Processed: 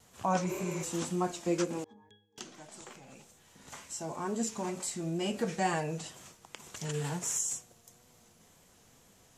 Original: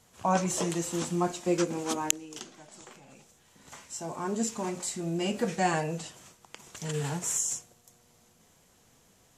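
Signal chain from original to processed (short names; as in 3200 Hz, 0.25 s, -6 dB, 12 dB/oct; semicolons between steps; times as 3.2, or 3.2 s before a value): 0.51–0.81 spectral repair 220–11000 Hz before; in parallel at -1.5 dB: compressor, threshold -41 dBFS, peak gain reduction 21 dB; on the sum: wow and flutter 47 cents; 1.84–2.38 octave resonator G#, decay 0.41 s; gain -4.5 dB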